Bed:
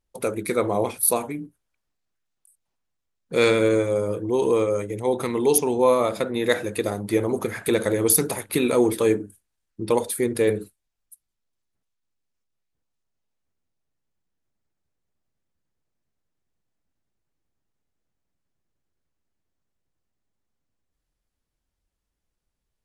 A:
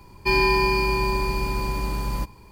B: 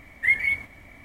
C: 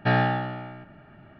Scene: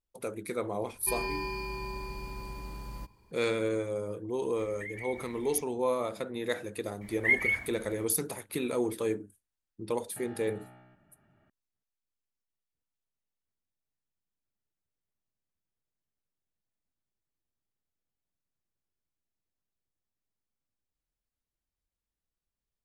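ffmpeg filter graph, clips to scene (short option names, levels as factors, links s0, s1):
-filter_complex "[2:a]asplit=2[s0][s1];[0:a]volume=0.282[s2];[s0]acompressor=threshold=0.0178:ratio=6:attack=3.2:release=140:knee=1:detection=peak[s3];[3:a]acompressor=threshold=0.0398:ratio=6:attack=3.2:release=140:knee=1:detection=peak[s4];[1:a]atrim=end=2.51,asetpts=PTS-STARTPTS,volume=0.178,afade=t=in:d=0.004:c=hsin,afade=t=out:st=2.506:d=0.004:c=hsin,adelay=810[s5];[s3]atrim=end=1.04,asetpts=PTS-STARTPTS,volume=0.531,afade=t=in:d=0.004:c=hsin,afade=t=out:st=1.036:d=0.004:c=hsin,adelay=4580[s6];[s1]atrim=end=1.04,asetpts=PTS-STARTPTS,volume=0.596,afade=t=in:d=0.004:c=hsin,afade=t=out:st=1.036:d=0.004:c=hsin,adelay=7010[s7];[s4]atrim=end=1.39,asetpts=PTS-STARTPTS,volume=0.141,afade=t=in:d=0.004:c=hsin,afade=t=out:st=1.386:d=0.004:c=hsin,adelay=10110[s8];[s2][s5][s6][s7][s8]amix=inputs=5:normalize=0"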